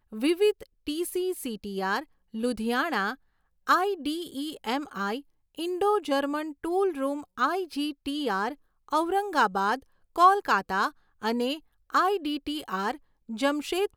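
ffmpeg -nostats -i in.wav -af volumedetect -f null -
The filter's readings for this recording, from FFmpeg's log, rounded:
mean_volume: -28.2 dB
max_volume: -8.4 dB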